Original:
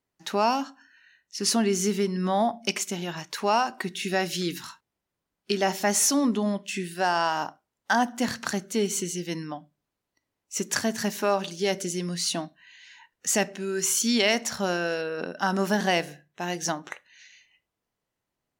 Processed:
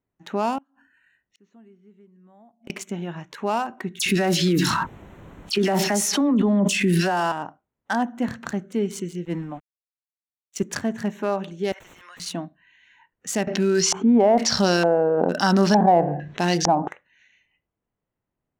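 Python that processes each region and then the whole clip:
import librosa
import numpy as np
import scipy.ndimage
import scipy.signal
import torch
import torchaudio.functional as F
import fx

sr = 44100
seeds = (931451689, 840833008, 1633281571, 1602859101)

y = fx.chain(x, sr, fx.resample_bad(factor=4, down='filtered', up='hold'),
    fx.lowpass(hz=10000.0, slope=12),
    fx.gate_flip(shuts_db=-28.0, range_db=-29), at=(0.58, 2.7))
y = fx.chain(y, sr, fx.dispersion(late='lows', ms=68.0, hz=2700.0),
    fx.env_flatten(amount_pct=100), at=(3.99, 7.32))
y = fx.chain(y, sr, fx.high_shelf(hz=4000.0, db=-6.0),
    fx.sample_gate(floor_db=-41.5),
    fx.band_widen(depth_pct=70), at=(9.25, 10.63))
y = fx.chain(y, sr, fx.highpass(hz=1000.0, slope=24),
    fx.overflow_wrap(gain_db=32.5),
    fx.pre_swell(db_per_s=24.0), at=(11.72, 12.2))
y = fx.chain(y, sr, fx.filter_lfo_lowpass(shape='square', hz=1.1, low_hz=810.0, high_hz=4900.0, q=4.8),
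    fx.env_flatten(amount_pct=50), at=(13.47, 16.88))
y = fx.wiener(y, sr, points=9)
y = fx.low_shelf(y, sr, hz=370.0, db=7.5)
y = y * 10.0 ** (-2.5 / 20.0)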